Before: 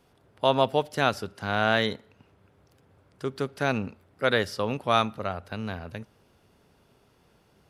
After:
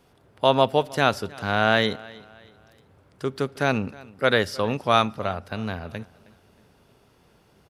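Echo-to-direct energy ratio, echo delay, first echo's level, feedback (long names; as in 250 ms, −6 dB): −21.5 dB, 315 ms, −22.0 dB, 38%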